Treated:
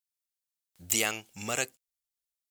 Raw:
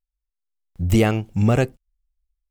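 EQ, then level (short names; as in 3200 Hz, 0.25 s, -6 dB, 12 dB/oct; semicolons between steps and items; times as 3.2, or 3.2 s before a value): high shelf 10000 Hz -7.5 dB; dynamic EQ 7100 Hz, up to +7 dB, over -57 dBFS, Q 5; differentiator; +8.0 dB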